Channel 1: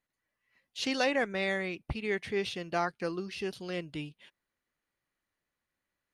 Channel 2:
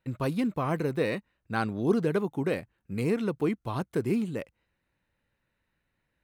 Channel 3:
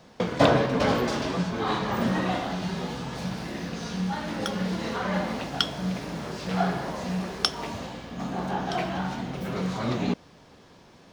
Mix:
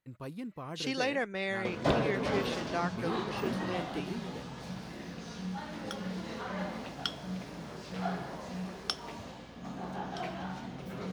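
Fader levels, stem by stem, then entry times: -3.0, -13.0, -9.5 dB; 0.00, 0.00, 1.45 s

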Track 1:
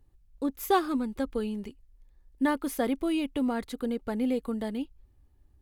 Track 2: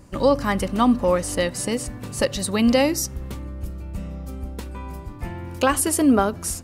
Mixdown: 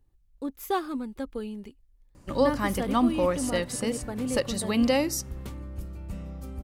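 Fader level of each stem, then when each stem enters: -3.5, -5.5 dB; 0.00, 2.15 s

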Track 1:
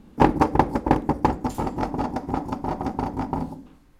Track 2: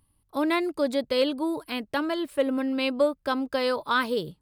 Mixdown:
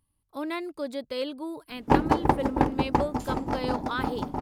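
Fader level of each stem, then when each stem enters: -3.5, -7.5 dB; 1.70, 0.00 s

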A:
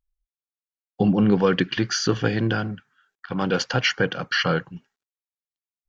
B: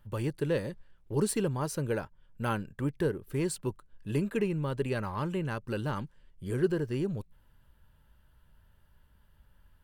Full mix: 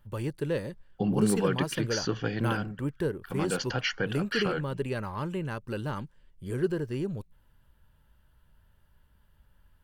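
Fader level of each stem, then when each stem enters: -8.5, -0.5 dB; 0.00, 0.00 s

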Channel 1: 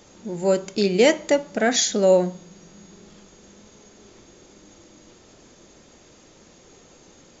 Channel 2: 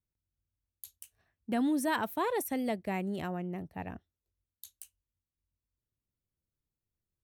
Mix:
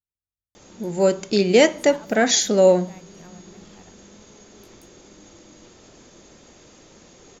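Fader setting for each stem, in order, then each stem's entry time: +2.0, -11.5 dB; 0.55, 0.00 s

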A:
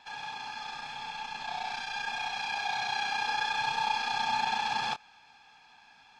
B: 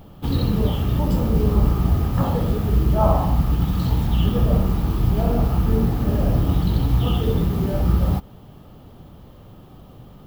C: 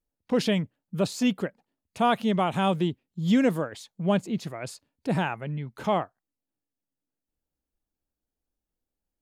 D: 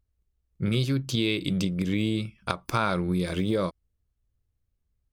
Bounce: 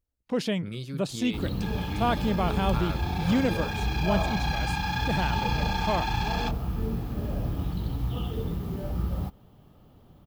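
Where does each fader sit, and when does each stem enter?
-1.0, -11.0, -3.5, -11.0 dB; 1.55, 1.10, 0.00, 0.00 s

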